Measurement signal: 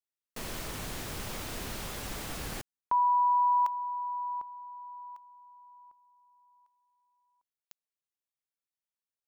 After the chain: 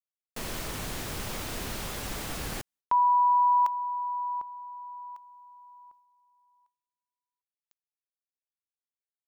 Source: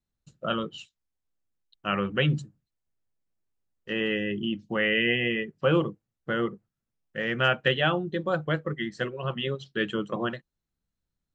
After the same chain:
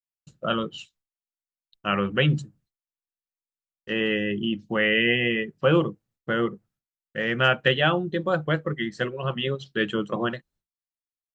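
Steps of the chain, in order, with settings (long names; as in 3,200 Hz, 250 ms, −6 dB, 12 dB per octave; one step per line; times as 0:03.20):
downward expander −60 dBFS
level +3 dB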